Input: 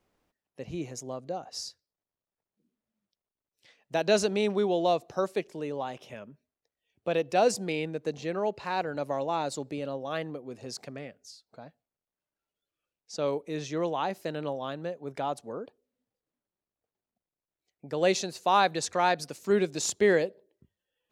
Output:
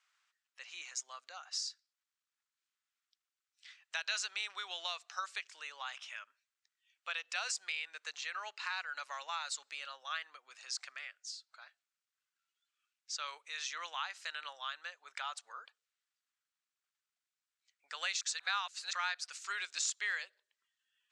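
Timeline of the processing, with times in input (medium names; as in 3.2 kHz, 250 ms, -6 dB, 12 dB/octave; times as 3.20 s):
18.21–18.93 s: reverse
whole clip: Chebyshev band-pass 1.3–8 kHz, order 3; compression 2.5:1, threshold -42 dBFS; trim +5 dB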